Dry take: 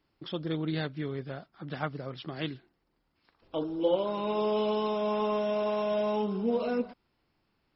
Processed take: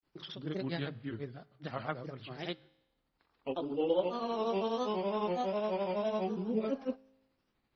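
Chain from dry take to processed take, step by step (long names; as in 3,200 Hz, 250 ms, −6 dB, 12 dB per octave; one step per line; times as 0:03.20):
mains-hum notches 50/100/150 Hz
granular cloud 149 ms, grains 12 per second, pitch spread up and down by 3 semitones
tuned comb filter 53 Hz, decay 1 s, harmonics all, mix 30%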